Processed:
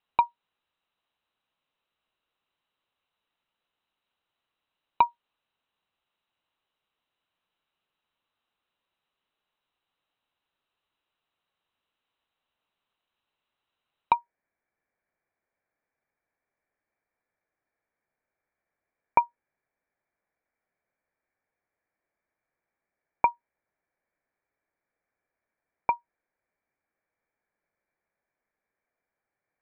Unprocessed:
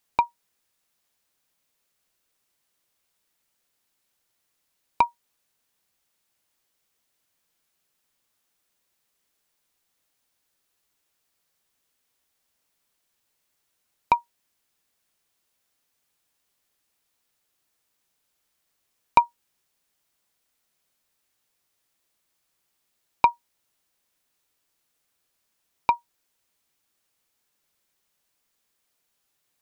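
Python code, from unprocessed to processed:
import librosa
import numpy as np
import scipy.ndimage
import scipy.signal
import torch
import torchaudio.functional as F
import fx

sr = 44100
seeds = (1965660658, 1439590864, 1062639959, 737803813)

y = fx.cheby_ripple(x, sr, hz=fx.steps((0.0, 4000.0), (14.12, 2400.0)), ripple_db=6)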